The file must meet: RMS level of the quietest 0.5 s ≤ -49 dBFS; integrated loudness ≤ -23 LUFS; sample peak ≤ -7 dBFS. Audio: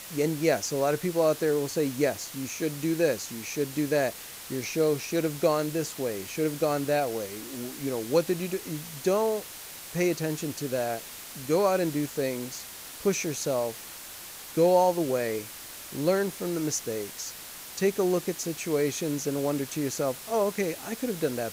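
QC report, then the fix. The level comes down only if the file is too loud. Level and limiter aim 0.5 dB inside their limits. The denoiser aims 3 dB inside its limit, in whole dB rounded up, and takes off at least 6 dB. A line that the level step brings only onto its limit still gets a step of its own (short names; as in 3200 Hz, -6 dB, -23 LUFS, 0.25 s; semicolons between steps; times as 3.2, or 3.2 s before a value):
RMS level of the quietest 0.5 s -43 dBFS: fail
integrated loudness -28.5 LUFS: OK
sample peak -10.0 dBFS: OK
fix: denoiser 9 dB, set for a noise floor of -43 dBFS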